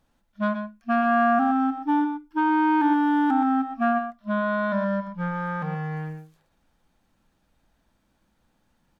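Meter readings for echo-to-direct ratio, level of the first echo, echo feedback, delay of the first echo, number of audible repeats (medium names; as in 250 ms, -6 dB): -8.5 dB, -9.5 dB, no regular repeats, 122 ms, 1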